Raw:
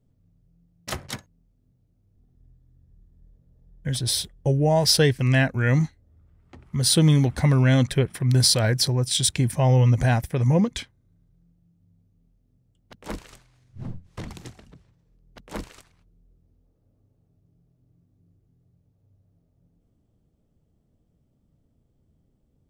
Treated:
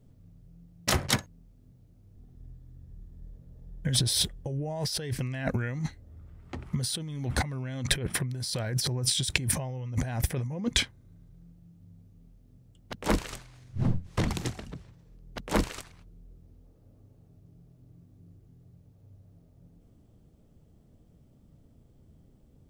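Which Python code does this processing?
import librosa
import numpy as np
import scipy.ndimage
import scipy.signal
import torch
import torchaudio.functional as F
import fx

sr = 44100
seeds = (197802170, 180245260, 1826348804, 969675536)

y = fx.over_compress(x, sr, threshold_db=-30.0, ratio=-1.0)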